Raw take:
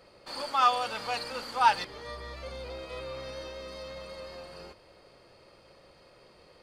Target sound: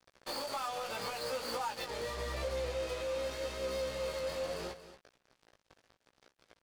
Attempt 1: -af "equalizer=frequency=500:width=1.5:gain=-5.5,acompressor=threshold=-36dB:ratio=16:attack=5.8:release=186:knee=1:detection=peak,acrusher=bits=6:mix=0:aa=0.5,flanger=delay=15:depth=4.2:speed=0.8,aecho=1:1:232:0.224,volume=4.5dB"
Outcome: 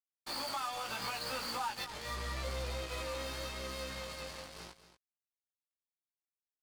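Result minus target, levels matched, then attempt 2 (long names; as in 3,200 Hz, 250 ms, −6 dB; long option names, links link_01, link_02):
500 Hz band −6.5 dB
-af "equalizer=frequency=500:width=1.5:gain=6,acompressor=threshold=-36dB:ratio=16:attack=5.8:release=186:knee=1:detection=peak,acrusher=bits=6:mix=0:aa=0.5,flanger=delay=15:depth=4.2:speed=0.8,aecho=1:1:232:0.224,volume=4.5dB"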